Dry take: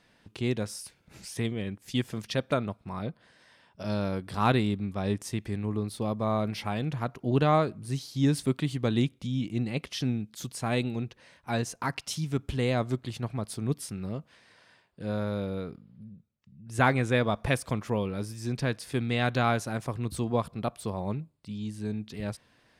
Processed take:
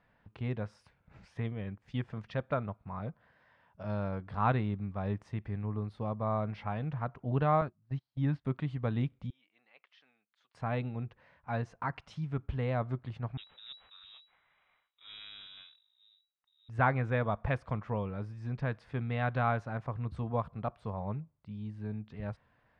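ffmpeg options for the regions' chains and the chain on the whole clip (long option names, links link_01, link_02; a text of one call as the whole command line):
ffmpeg -i in.wav -filter_complex "[0:a]asettb=1/sr,asplit=3[link_01][link_02][link_03];[link_01]atrim=end=7.614[link_04];[link_02]atrim=start=7.61:end=8.45,asetpts=PTS-STARTPTS,afade=type=in:duration=0.004:curve=qsin,afade=type=out:start_time=0.836:duration=0.004:curve=qsin,equalizer=frequency=450:width_type=o:width=0.22:gain=-11.5,agate=range=-25dB:threshold=-33dB:ratio=16:release=100:detection=peak,lowpass=4500[link_05];[link_03]atrim=start=8.446[link_06];[link_04][link_05]acrossfade=duration=0.004:curve1=hsin:curve2=qsin[link_07];[link_07][link_06]acrossfade=duration=0.004:curve1=qsin:curve2=hsin,asettb=1/sr,asplit=3[link_08][link_09][link_10];[link_08]atrim=end=9.304[link_11];[link_09]atrim=start=9.3:end=10.55,asetpts=PTS-STARTPTS,afade=type=in:duration=0.004:curve=qsin,afade=type=out:start_time=1.246:duration=0.004:curve=qsin,highpass=420,lowpass=2800,aderivative[link_12];[link_10]atrim=start=10.546[link_13];[link_11][link_12]acrossfade=duration=0.004:curve1=hsin:curve2=qsin[link_14];[link_14][link_13]acrossfade=duration=0.004:curve1=qsin:curve2=hsin,asettb=1/sr,asplit=3[link_15][link_16][link_17];[link_15]atrim=end=13.374[link_18];[link_16]atrim=start=13.37:end=16.69,asetpts=PTS-STARTPTS,afade=type=in:duration=0.004:curve=qsin,afade=type=out:start_time=3.316:duration=0.004:curve=qsin,aeval=exprs='if(lt(val(0),0),0.251*val(0),val(0))':channel_layout=same,lowpass=frequency=3300:width_type=q:width=0.5098,lowpass=frequency=3300:width_type=q:width=0.6013,lowpass=frequency=3300:width_type=q:width=0.9,lowpass=frequency=3300:width_type=q:width=2.563,afreqshift=-3900[link_19];[link_17]atrim=start=16.686[link_20];[link_18][link_19]acrossfade=duration=0.004:curve1=hsin:curve2=qsin[link_21];[link_21][link_20]acrossfade=duration=0.004:curve1=qsin:curve2=hsin,lowpass=1400,equalizer=frequency=310:width_type=o:width=1.8:gain=-9.5,bandreject=frequency=360:width=12" out.wav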